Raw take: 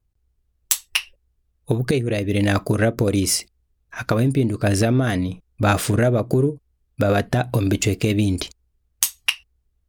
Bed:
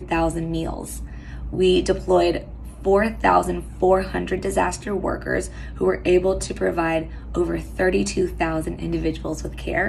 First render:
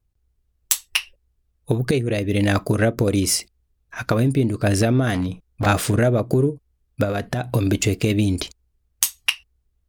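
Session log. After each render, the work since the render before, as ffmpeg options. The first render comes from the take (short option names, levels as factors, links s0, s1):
-filter_complex "[0:a]asettb=1/sr,asplit=3[s0][s1][s2];[s0]atrim=end=5.144[s3];[s1]atrim=start=5.14:end=5.66,asetpts=PTS-STARTPTS,afade=t=in:d=0.004:c=qsin,afade=t=out:st=0.516:d=0.004:c=qsin,aeval=exprs='0.158*(abs(mod(val(0)/0.158+3,4)-2)-1)':c=same[s4];[s2]atrim=start=5.656[s5];[s3][s4]acrossfade=d=0.004:c1=hsin:c2=qsin[s6];[s6][s5]acrossfade=d=0.004:c1=qsin:c2=hsin,asettb=1/sr,asplit=3[s7][s8][s9];[s7]atrim=end=7.044[s10];[s8]atrim=start=7.04:end=7.5,asetpts=PTS-STARTPTS,afade=t=in:d=0.004:c=qsin,afade=t=out:st=0.456:d=0.004:c=qsin,acompressor=threshold=0.112:ratio=6:attack=3.2:release=140:knee=1:detection=peak[s11];[s9]atrim=start=7.496[s12];[s10][s11]acrossfade=d=0.004:c1=hsin:c2=qsin[s13];[s13][s12]acrossfade=d=0.004:c1=qsin:c2=hsin"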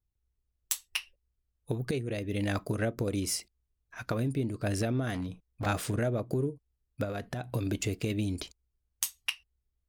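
-af "volume=0.251"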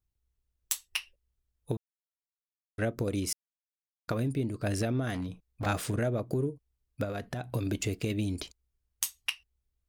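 -filter_complex "[0:a]asplit=5[s0][s1][s2][s3][s4];[s0]atrim=end=1.77,asetpts=PTS-STARTPTS,afade=t=out:st=1.766:d=0.004:c=hsin[s5];[s1]atrim=start=1.77:end=2.78,asetpts=PTS-STARTPTS,volume=0[s6];[s2]atrim=start=2.78:end=3.33,asetpts=PTS-STARTPTS,afade=t=in:d=0.004:c=hsin,afade=t=out:st=0.546:d=0.004:c=hsin[s7];[s3]atrim=start=3.33:end=4.08,asetpts=PTS-STARTPTS,volume=0[s8];[s4]atrim=start=4.08,asetpts=PTS-STARTPTS,afade=t=in:d=0.004:c=hsin[s9];[s5][s6][s7][s8][s9]concat=n=5:v=0:a=1"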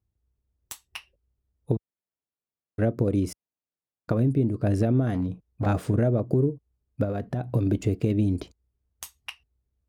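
-af "highpass=63,tiltshelf=f=1200:g=9"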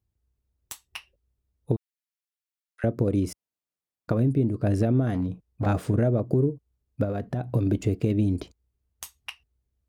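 -filter_complex "[0:a]asettb=1/sr,asplit=3[s0][s1][s2];[s0]atrim=end=1.764[s3];[s1]atrim=start=1.76:end=2.84,asetpts=PTS-STARTPTS,afade=t=in:d=0.004:c=qsin,afade=t=out:st=1.076:d=0.004:c=qsin,highpass=f=1400:w=0.5412,highpass=f=1400:w=1.3066[s4];[s2]atrim=start=2.836[s5];[s3][s4]acrossfade=d=0.004:c1=hsin:c2=qsin[s6];[s6][s5]acrossfade=d=0.004:c1=qsin:c2=hsin"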